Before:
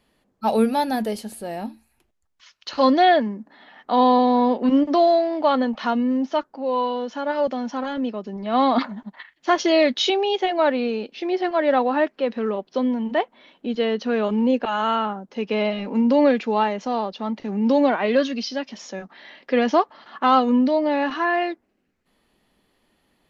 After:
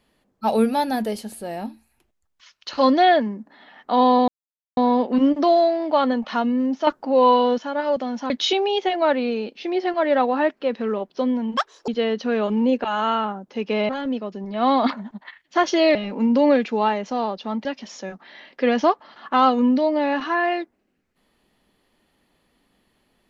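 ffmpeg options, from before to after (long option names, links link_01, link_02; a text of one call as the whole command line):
ffmpeg -i in.wav -filter_complex "[0:a]asplit=10[link_01][link_02][link_03][link_04][link_05][link_06][link_07][link_08][link_09][link_10];[link_01]atrim=end=4.28,asetpts=PTS-STARTPTS,afade=type=out:start_time=4.276:duration=0.004:curve=hsin,apad=pad_dur=0.49[link_11];[link_02]atrim=start=4.28:end=6.382,asetpts=PTS-STARTPTS,afade=type=in:duration=0.004:curve=hsin[link_12];[link_03]atrim=start=6.378:end=7.092,asetpts=PTS-STARTPTS,volume=7.5dB[link_13];[link_04]atrim=start=7.088:end=7.812[link_14];[link_05]atrim=start=9.868:end=13.144[link_15];[link_06]atrim=start=13.14:end=13.69,asetpts=PTS-STARTPTS,asetrate=78057,aresample=44100,atrim=end_sample=13703,asetpts=PTS-STARTPTS[link_16];[link_07]atrim=start=13.686:end=15.702[link_17];[link_08]atrim=start=7.808:end=9.872[link_18];[link_09]atrim=start=15.698:end=17.402[link_19];[link_10]atrim=start=18.548[link_20];[link_11][link_12]concat=n=2:v=0:a=1[link_21];[link_21][link_13]acrossfade=duration=0.004:curve1=hsin:curve2=hsin[link_22];[link_22][link_14]acrossfade=duration=0.004:curve1=hsin:curve2=hsin[link_23];[link_23][link_15]acrossfade=duration=0.004:curve1=hsin:curve2=hsin[link_24];[link_24][link_16]acrossfade=duration=0.004:curve1=hsin:curve2=hsin[link_25];[link_25][link_17]acrossfade=duration=0.004:curve1=hsin:curve2=hsin[link_26];[link_26][link_18]acrossfade=duration=0.004:curve1=hsin:curve2=hsin[link_27];[link_27][link_19]acrossfade=duration=0.004:curve1=hsin:curve2=hsin[link_28];[link_28][link_20]acrossfade=duration=0.004:curve1=hsin:curve2=hsin" out.wav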